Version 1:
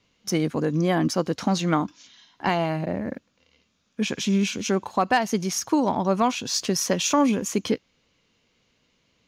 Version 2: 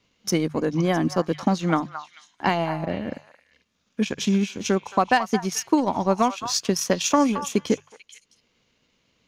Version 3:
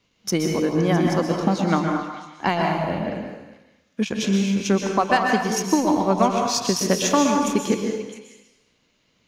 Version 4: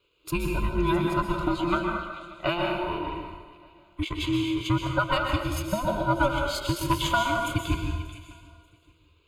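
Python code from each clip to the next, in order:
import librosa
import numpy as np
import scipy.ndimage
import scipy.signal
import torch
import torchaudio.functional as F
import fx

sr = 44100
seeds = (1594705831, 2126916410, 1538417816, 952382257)

y1 = fx.transient(x, sr, attack_db=3, sustain_db=-9)
y1 = fx.hum_notches(y1, sr, base_hz=50, count=3)
y1 = fx.echo_stepped(y1, sr, ms=220, hz=1100.0, octaves=1.4, feedback_pct=70, wet_db=-8.0)
y2 = fx.rev_plate(y1, sr, seeds[0], rt60_s=0.99, hf_ratio=0.85, predelay_ms=110, drr_db=1.5)
y3 = fx.band_invert(y2, sr, width_hz=500)
y3 = fx.fixed_phaser(y3, sr, hz=1200.0, stages=8)
y3 = fx.echo_feedback(y3, sr, ms=587, feedback_pct=31, wet_db=-22.0)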